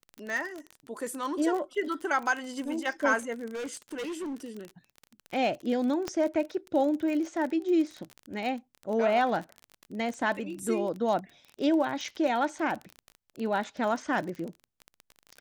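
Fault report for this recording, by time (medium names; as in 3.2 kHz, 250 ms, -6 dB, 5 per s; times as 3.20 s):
crackle 31 per s -33 dBFS
3.54–4.37 s: clipped -32 dBFS
6.08 s: pop -17 dBFS
12.04 s: dropout 4.1 ms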